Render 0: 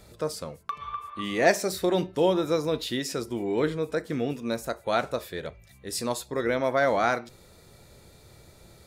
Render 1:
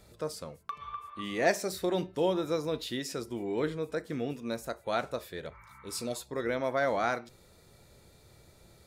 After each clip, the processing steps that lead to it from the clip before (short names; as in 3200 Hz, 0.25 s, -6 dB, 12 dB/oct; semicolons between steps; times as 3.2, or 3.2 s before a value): spectral repair 5.54–6.14, 820–2300 Hz before; gain -5.5 dB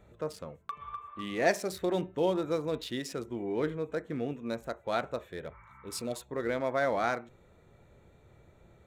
Wiener smoothing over 9 samples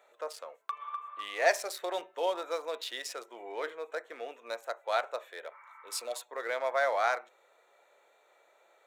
HPF 570 Hz 24 dB/oct; gain +2.5 dB